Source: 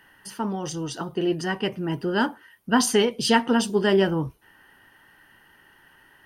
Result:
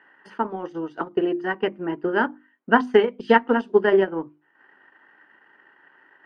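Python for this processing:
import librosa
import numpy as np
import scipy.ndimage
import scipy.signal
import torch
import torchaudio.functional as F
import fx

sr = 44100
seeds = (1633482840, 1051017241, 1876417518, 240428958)

y = scipy.signal.sosfilt(scipy.signal.cheby1(2, 1.0, [300.0, 1800.0], 'bandpass', fs=sr, output='sos'), x)
y = fx.transient(y, sr, attack_db=6, sustain_db=-10)
y = fx.hum_notches(y, sr, base_hz=50, count=7)
y = F.gain(torch.from_numpy(y), 1.5).numpy()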